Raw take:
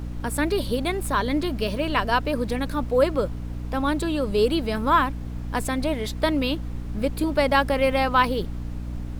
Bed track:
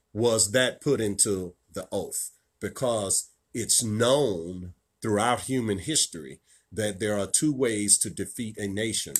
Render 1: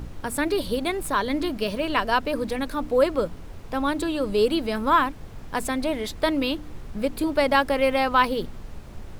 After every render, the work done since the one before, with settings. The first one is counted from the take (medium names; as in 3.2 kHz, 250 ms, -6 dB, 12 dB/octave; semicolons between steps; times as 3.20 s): de-hum 60 Hz, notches 5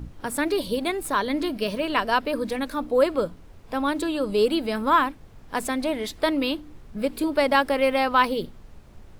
noise print and reduce 8 dB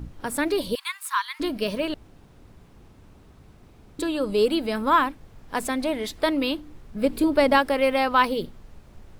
0.75–1.40 s: steep high-pass 940 Hz 96 dB/octave; 1.94–3.99 s: room tone; 7.02–7.58 s: bass shelf 440 Hz +6 dB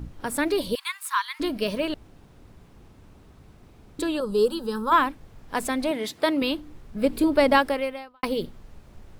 4.20–4.92 s: static phaser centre 440 Hz, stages 8; 5.91–6.42 s: high-pass 110 Hz 24 dB/octave; 7.66–8.23 s: fade out quadratic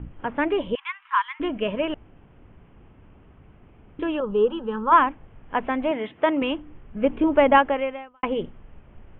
steep low-pass 3.2 kHz 96 dB/octave; dynamic bell 860 Hz, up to +5 dB, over -37 dBFS, Q 1.4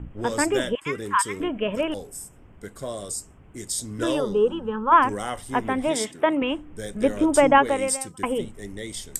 add bed track -6.5 dB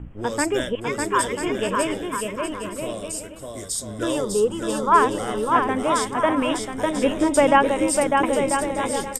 bouncing-ball echo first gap 600 ms, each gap 0.65×, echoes 5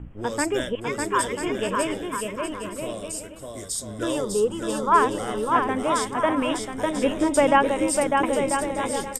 trim -2 dB